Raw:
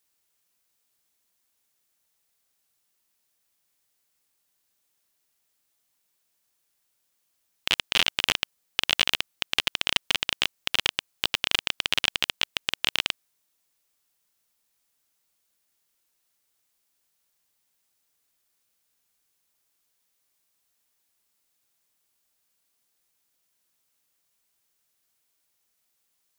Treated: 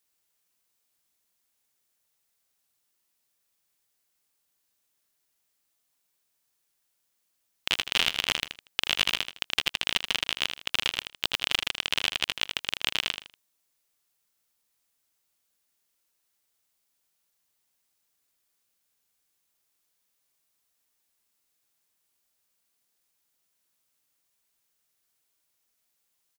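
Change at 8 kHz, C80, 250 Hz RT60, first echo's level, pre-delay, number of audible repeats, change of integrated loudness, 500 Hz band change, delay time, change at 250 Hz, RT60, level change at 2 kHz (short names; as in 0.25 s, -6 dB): -2.0 dB, none, none, -8.5 dB, none, 3, -2.0 dB, -2.0 dB, 79 ms, -2.0 dB, none, -2.0 dB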